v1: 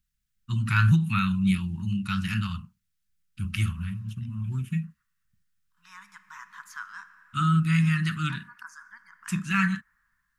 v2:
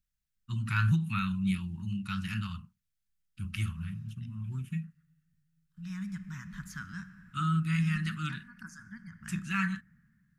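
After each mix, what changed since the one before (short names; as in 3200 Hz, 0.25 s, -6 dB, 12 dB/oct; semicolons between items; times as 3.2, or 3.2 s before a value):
first voice -6.5 dB; second voice: remove resonant high-pass 1000 Hz, resonance Q 5.9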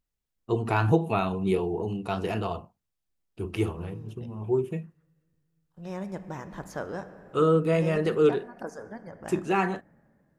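master: remove elliptic band-stop 200–1400 Hz, stop band 70 dB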